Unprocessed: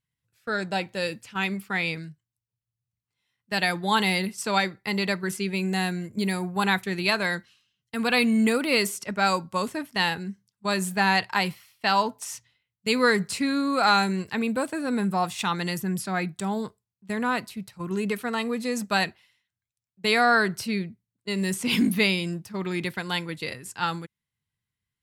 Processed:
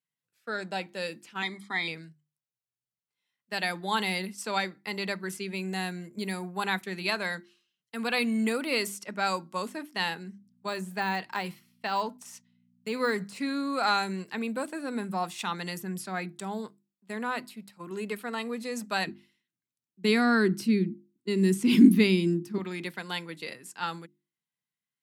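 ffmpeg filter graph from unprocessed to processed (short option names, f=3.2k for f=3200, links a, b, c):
-filter_complex "[0:a]asettb=1/sr,asplit=3[a][b][c];[a]atrim=end=1.424[d];[b]atrim=start=1.42:end=1.88,asetpts=PTS-STARTPTS,afade=t=in:d=0.004:c=qsin,afade=t=out:st=0.456:d=0.004:c=qsin,asuperstop=centerf=2800:order=12:qfactor=4.7,highpass=120,equalizer=f=190:t=q:w=4:g=-7,equalizer=f=300:t=q:w=4:g=10,equalizer=f=3.6k:t=q:w=4:g=9,lowpass=f=9.5k:w=0.5412,lowpass=f=9.5k:w=1.3066,aecho=1:1:1:0.68,atrim=end_sample=20286[e];[c]atrim=start=1.876[f];[d][e]acrossfade=d=0.004:c1=hsin:c2=qsin[g];[g][f]acrossfade=d=0.004:c1=qsin:c2=hsin,asettb=1/sr,asplit=3[h][i][j];[h]atrim=end=10.204[k];[i]atrim=start=10.2:end=13.69,asetpts=PTS-STARTPTS,afade=t=in:d=0.004:c=qsin,afade=t=out:st=3.486:d=0.004:c=qsin,agate=range=-7dB:threshold=-52dB:ratio=16:release=100:detection=peak,deesser=0.75,aeval=exprs='val(0)+0.00316*(sin(2*PI*60*n/s)+sin(2*PI*2*60*n/s)/2+sin(2*PI*3*60*n/s)/3+sin(2*PI*4*60*n/s)/4+sin(2*PI*5*60*n/s)/5)':c=same[l];[j]atrim=start=13.686[m];[k][l]acrossfade=d=0.004:c1=hsin:c2=qsin[n];[n][m]acrossfade=d=0.004:c1=qsin:c2=hsin,asettb=1/sr,asplit=3[o][p][q];[o]atrim=end=16.584[r];[p]atrim=start=16.58:end=18.46,asetpts=PTS-STARTPTS,afade=t=in:d=0.004:c=qsin,afade=t=out:st=1.876:d=0.004:c=qsin,equalizer=f=180:w=6.8:g=-6,bandreject=f=6k:w=8.3[s];[q]atrim=start=18.456[t];[r][s]acrossfade=d=0.004:c1=hsin:c2=qsin[u];[u][t]acrossfade=d=0.004:c1=qsin:c2=hsin,asettb=1/sr,asplit=3[v][w][x];[v]atrim=end=19.074[y];[w]atrim=start=19.07:end=22.58,asetpts=PTS-STARTPTS,afade=t=in:d=0.004:c=qsin,afade=t=out:st=3.506:d=0.004:c=qsin,lowshelf=f=440:t=q:w=3:g=9,aeval=exprs='val(0)+0.0501*(sin(2*PI*50*n/s)+sin(2*PI*2*50*n/s)/2+sin(2*PI*3*50*n/s)/3+sin(2*PI*4*50*n/s)/4+sin(2*PI*5*50*n/s)/5)':c=same[z];[x]atrim=start=22.576[aa];[y][z]acrossfade=d=0.004:c1=hsin:c2=qsin[ab];[ab][aa]acrossfade=d=0.004:c1=qsin:c2=hsin,highpass=f=170:w=0.5412,highpass=f=170:w=1.3066,bandreject=f=50:t=h:w=6,bandreject=f=100:t=h:w=6,bandreject=f=150:t=h:w=6,bandreject=f=200:t=h:w=6,bandreject=f=250:t=h:w=6,bandreject=f=300:t=h:w=6,bandreject=f=350:t=h:w=6,volume=-5.5dB"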